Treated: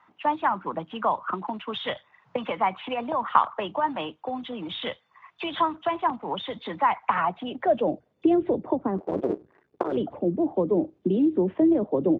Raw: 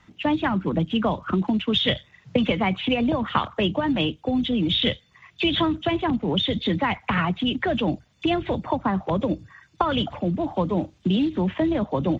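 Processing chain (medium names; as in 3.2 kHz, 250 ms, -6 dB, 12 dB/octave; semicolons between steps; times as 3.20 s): 8.98–9.97 s: cycle switcher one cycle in 2, muted; band-pass sweep 990 Hz -> 390 Hz, 7.07–8.29 s; trim +6 dB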